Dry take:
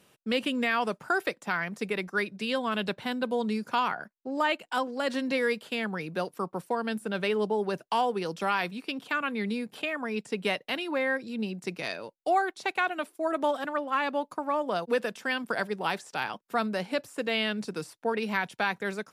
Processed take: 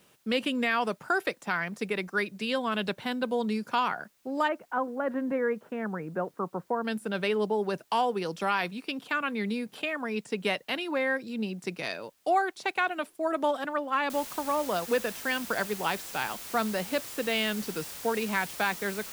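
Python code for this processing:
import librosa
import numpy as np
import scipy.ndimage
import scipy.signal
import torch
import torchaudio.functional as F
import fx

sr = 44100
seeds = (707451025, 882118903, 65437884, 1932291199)

y = fx.lowpass(x, sr, hz=1600.0, slope=24, at=(4.47, 6.83), fade=0.02)
y = fx.noise_floor_step(y, sr, seeds[0], at_s=14.1, before_db=-69, after_db=-42, tilt_db=0.0)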